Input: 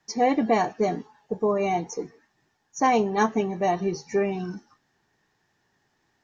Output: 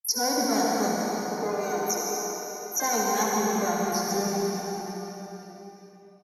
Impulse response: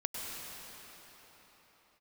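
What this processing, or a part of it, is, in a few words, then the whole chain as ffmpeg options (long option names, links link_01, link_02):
shimmer-style reverb: -filter_complex "[0:a]agate=range=-42dB:threshold=-55dB:ratio=16:detection=peak,asplit=3[link_01][link_02][link_03];[link_01]afade=type=out:start_time=1.51:duration=0.02[link_04];[link_02]highpass=frequency=290:width=0.5412,highpass=frequency=290:width=1.3066,afade=type=in:start_time=1.51:duration=0.02,afade=type=out:start_time=2.89:duration=0.02[link_05];[link_03]afade=type=in:start_time=2.89:duration=0.02[link_06];[link_04][link_05][link_06]amix=inputs=3:normalize=0,highshelf=frequency=4000:width_type=q:width=3:gain=11,aecho=1:1:70|140|210|280:0.447|0.147|0.0486|0.0161,asplit=2[link_07][link_08];[link_08]asetrate=88200,aresample=44100,atempo=0.5,volume=-9dB[link_09];[link_07][link_09]amix=inputs=2:normalize=0[link_10];[1:a]atrim=start_sample=2205[link_11];[link_10][link_11]afir=irnorm=-1:irlink=0,volume=-7dB"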